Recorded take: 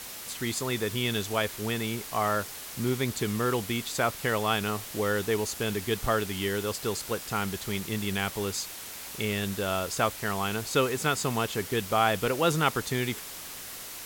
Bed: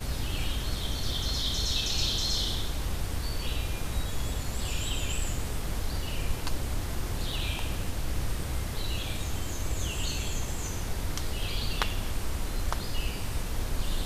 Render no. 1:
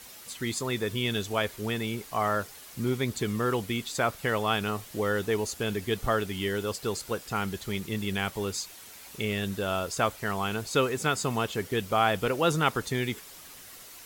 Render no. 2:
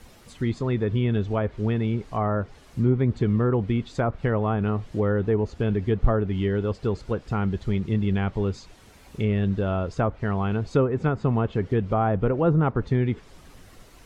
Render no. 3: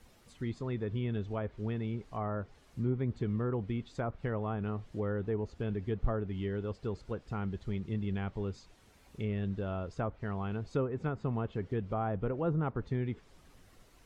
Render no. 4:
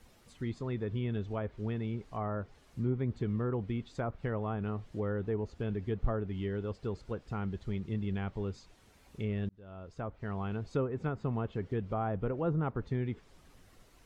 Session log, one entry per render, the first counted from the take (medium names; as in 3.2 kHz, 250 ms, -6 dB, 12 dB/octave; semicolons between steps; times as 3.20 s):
noise reduction 8 dB, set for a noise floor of -41 dBFS
low-pass that closes with the level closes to 1.3 kHz, closed at -22 dBFS; tilt EQ -3.5 dB/octave
trim -11 dB
9.49–10.39 s: fade in